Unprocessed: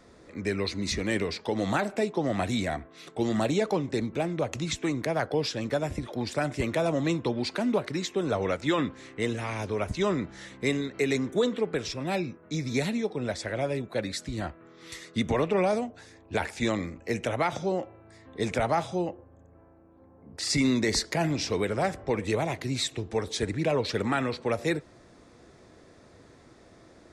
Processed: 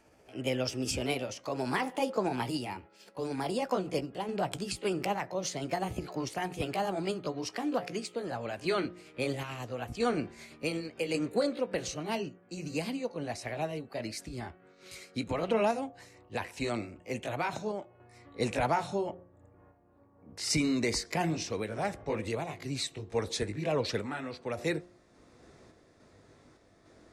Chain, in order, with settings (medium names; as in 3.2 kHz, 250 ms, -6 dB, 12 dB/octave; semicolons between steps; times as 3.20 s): pitch bend over the whole clip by +4.5 st ending unshifted; random-step tremolo; de-hum 177.5 Hz, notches 4; trim -1 dB